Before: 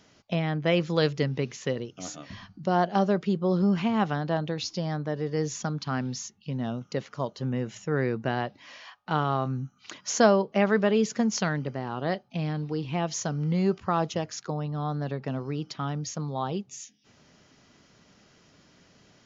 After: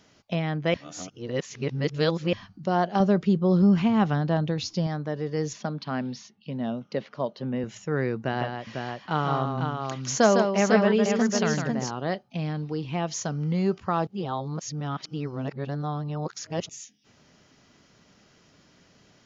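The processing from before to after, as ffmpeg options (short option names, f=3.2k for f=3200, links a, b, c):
-filter_complex "[0:a]asettb=1/sr,asplit=3[a][b][c];[a]atrim=end=3.004[d];[b]atrim=start=3:end=4.87,asetpts=PTS-STARTPTS,afade=t=in:d=0.004:c=qsin,afade=t=out:st=1.866:d=0.004:c=qsin,lowshelf=f=210:g=9[e];[c]atrim=start=4.866[f];[d][e]acrossfade=d=0.004:c1=hsin:c2=qsin[g];[g][f]acrossfade=d=0.004:c1=qsin:c2=hsin,asettb=1/sr,asplit=3[h][i][j];[h]atrim=end=5.534[k];[i]atrim=start=5.53:end=7.64,asetpts=PTS-STARTPTS,afade=t=in:d=0.004:c=qsin,afade=t=out:st=2.106:d=0.004:c=qsin,highpass=150,equalizer=f=220:t=q:w=4:g=4,equalizer=f=600:t=q:w=4:g=5,equalizer=f=1.3k:t=q:w=4:g=-3,lowpass=f=4.7k:w=0.5412,lowpass=f=4.7k:w=1.3066[l];[j]atrim=start=7.636[m];[k][l]acrossfade=d=0.004:c1=hsin:c2=qsin[n];[n][m]acrossfade=d=0.004:c1=qsin:c2=hsin,asettb=1/sr,asplit=3[o][p][q];[o]atrim=end=8.174[r];[p]atrim=start=8.17:end=11.91,asetpts=PTS-STARTPTS,afade=t=in:d=0.004:c=qsin,afade=t=out:st=3.736:d=0.004:c=qsin,aecho=1:1:155|499:0.531|0.562,atrim=end_sample=164934[s];[q]atrim=start=11.906[t];[r][s]acrossfade=d=0.004:c1=hsin:c2=qsin[u];[u][t]acrossfade=d=0.004:c1=qsin:c2=hsin,asplit=5[v][w][x][y][z];[v]atrim=end=0.742[aa];[w]atrim=start=0.738:end=2.332,asetpts=PTS-STARTPTS,areverse[ab];[x]atrim=start=2.328:end=14.072[ac];[y]atrim=start=14.068:end=16.692,asetpts=PTS-STARTPTS,areverse[ad];[z]atrim=start=16.688[ae];[aa][ab]acrossfade=d=0.004:c1=hsin:c2=hsin[af];[af][ac]acrossfade=d=0.004:c1=hsin:c2=hsin[ag];[ag][ad]acrossfade=d=0.004:c1=hsin:c2=hsin[ah];[ah][ae]acrossfade=d=0.004:c1=hsin:c2=hsin"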